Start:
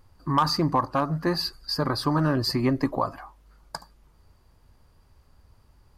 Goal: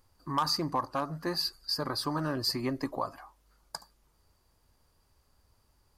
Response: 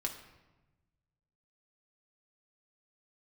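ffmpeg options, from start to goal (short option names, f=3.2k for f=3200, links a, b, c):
-af "bass=f=250:g=-5,treble=f=4k:g=7,volume=-7dB"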